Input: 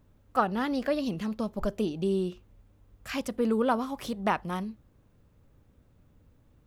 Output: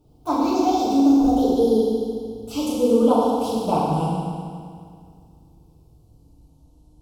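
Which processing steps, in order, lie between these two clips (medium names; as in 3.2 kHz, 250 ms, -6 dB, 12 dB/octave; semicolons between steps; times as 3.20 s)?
gliding tape speed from 139% -> 51%; Butterworth band-stop 1.8 kHz, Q 0.8; FDN reverb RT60 2.1 s, low-frequency decay 1.1×, high-frequency decay 0.9×, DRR -9 dB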